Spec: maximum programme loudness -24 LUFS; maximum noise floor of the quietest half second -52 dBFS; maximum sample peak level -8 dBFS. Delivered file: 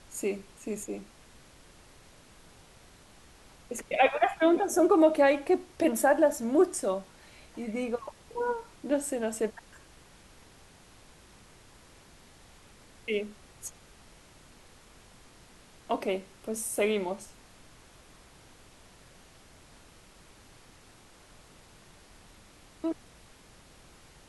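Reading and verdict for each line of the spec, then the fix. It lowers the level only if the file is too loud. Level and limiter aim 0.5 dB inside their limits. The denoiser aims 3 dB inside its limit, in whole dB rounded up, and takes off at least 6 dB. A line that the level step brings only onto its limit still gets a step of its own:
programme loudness -28.5 LUFS: OK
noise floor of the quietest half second -56 dBFS: OK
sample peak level -9.0 dBFS: OK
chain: none

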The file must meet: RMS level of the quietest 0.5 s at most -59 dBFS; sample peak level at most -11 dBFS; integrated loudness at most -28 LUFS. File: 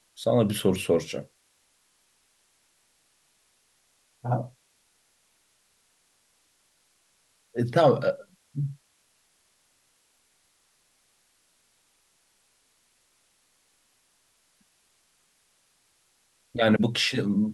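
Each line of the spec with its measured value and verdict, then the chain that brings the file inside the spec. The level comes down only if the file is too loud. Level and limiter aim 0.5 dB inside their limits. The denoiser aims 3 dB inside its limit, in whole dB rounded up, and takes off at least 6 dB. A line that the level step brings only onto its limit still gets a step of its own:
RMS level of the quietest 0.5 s -68 dBFS: OK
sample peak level -9.0 dBFS: fail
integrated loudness -26.0 LUFS: fail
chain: gain -2.5 dB

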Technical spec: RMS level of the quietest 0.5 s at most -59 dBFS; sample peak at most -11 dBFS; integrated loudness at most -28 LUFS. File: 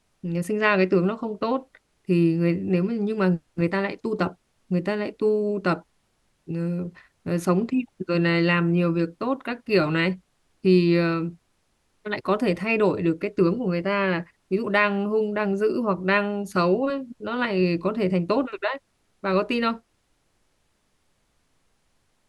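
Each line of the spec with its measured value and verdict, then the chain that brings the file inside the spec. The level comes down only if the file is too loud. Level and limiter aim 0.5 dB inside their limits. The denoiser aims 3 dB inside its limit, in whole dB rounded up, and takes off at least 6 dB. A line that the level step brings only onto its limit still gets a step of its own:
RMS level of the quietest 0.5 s -69 dBFS: OK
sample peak -6.0 dBFS: fail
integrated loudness -24.0 LUFS: fail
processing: gain -4.5 dB; limiter -11.5 dBFS

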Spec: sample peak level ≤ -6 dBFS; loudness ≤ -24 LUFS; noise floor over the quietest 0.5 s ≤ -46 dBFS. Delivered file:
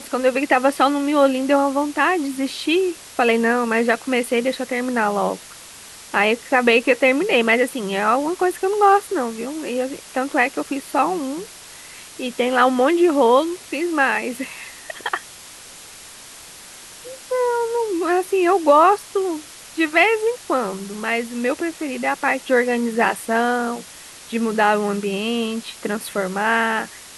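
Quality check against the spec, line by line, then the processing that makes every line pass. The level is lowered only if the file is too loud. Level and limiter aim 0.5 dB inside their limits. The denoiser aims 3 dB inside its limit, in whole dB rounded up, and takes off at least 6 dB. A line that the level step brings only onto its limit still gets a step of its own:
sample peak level -3.5 dBFS: fail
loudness -19.5 LUFS: fail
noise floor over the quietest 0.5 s -41 dBFS: fail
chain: denoiser 6 dB, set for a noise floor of -41 dBFS; gain -5 dB

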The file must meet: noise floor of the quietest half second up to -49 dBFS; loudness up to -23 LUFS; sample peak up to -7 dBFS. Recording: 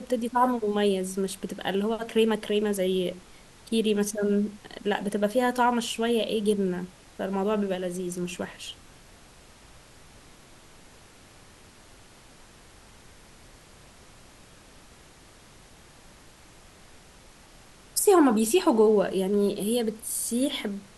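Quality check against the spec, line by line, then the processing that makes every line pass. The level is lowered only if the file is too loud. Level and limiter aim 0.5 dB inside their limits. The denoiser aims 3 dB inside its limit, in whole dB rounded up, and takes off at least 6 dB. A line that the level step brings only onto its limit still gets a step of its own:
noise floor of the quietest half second -52 dBFS: OK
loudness -26.0 LUFS: OK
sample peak -9.0 dBFS: OK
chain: none

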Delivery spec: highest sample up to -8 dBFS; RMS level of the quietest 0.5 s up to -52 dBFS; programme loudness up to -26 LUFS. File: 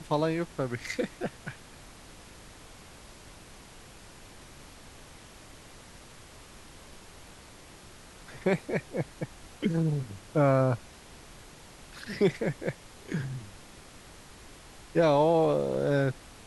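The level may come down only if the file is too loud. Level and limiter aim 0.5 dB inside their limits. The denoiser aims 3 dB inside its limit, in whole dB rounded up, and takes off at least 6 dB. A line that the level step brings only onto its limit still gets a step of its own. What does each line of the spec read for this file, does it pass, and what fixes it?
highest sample -12.0 dBFS: OK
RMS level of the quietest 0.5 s -50 dBFS: fail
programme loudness -29.0 LUFS: OK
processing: denoiser 6 dB, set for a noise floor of -50 dBFS

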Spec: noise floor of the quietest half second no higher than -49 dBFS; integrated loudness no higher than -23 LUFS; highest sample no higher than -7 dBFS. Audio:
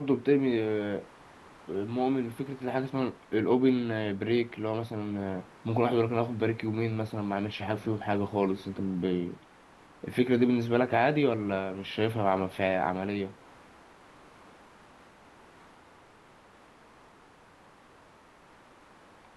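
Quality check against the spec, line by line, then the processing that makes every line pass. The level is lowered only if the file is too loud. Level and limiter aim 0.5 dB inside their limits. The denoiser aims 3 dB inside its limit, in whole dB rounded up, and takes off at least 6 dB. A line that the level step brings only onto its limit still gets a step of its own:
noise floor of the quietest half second -57 dBFS: OK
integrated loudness -29.5 LUFS: OK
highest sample -10.5 dBFS: OK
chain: none

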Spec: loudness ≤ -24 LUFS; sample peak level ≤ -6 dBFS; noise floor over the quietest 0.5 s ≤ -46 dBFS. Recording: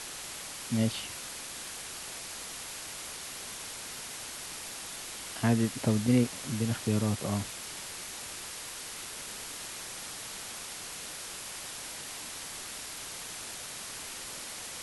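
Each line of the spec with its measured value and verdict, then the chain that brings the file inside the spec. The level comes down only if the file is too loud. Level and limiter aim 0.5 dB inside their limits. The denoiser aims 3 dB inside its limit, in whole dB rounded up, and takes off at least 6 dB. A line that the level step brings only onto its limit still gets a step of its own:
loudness -35.0 LUFS: OK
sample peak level -13.5 dBFS: OK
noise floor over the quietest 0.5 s -42 dBFS: fail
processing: denoiser 7 dB, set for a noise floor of -42 dBFS

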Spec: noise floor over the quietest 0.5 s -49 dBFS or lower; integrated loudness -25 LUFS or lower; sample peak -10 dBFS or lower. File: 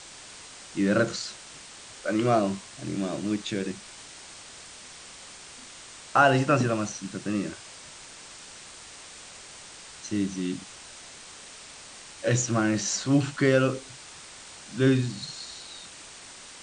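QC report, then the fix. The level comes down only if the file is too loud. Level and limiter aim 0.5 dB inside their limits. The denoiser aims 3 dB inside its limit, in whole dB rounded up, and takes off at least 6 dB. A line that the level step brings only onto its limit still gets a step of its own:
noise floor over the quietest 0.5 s -46 dBFS: fail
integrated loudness -26.5 LUFS: OK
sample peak -7.5 dBFS: fail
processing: denoiser 6 dB, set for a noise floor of -46 dBFS; limiter -10.5 dBFS

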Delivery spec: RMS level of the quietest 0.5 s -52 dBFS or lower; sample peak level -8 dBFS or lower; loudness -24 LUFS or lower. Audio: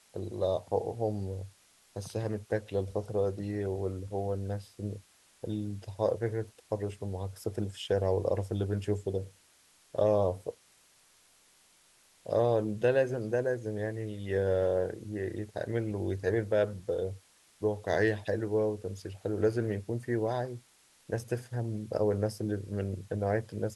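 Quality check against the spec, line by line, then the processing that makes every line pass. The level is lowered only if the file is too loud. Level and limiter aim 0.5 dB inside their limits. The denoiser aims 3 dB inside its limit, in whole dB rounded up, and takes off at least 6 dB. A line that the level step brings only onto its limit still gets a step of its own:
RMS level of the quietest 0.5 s -64 dBFS: OK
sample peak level -15.5 dBFS: OK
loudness -32.5 LUFS: OK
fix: none

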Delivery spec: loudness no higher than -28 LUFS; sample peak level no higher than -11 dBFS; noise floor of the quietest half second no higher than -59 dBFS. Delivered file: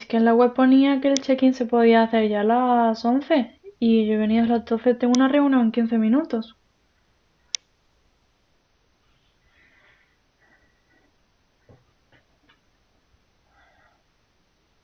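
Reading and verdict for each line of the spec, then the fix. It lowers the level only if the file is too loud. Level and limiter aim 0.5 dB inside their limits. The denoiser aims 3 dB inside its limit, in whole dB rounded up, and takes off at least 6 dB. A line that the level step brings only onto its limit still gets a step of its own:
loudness -20.0 LUFS: fail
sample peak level -2.5 dBFS: fail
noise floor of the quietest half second -65 dBFS: OK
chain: gain -8.5 dB; limiter -11.5 dBFS

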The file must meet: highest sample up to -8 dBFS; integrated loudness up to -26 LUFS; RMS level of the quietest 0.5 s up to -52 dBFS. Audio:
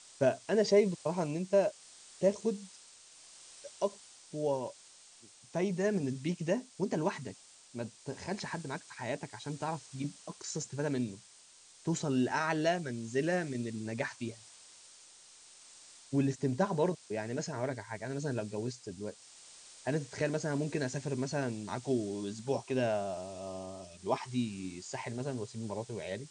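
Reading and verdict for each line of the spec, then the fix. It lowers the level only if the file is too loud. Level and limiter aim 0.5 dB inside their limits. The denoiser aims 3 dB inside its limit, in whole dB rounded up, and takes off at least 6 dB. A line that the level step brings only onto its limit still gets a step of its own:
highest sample -15.5 dBFS: OK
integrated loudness -35.0 LUFS: OK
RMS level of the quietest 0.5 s -59 dBFS: OK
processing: none

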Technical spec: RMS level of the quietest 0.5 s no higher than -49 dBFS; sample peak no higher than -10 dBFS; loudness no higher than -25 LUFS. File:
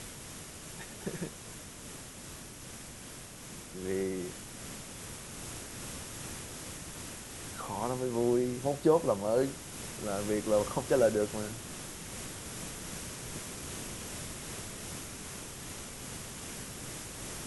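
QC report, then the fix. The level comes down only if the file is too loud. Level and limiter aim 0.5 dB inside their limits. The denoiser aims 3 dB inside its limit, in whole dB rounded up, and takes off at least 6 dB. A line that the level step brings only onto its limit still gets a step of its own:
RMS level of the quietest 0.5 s -47 dBFS: fail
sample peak -12.5 dBFS: OK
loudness -36.0 LUFS: OK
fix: denoiser 6 dB, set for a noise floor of -47 dBFS

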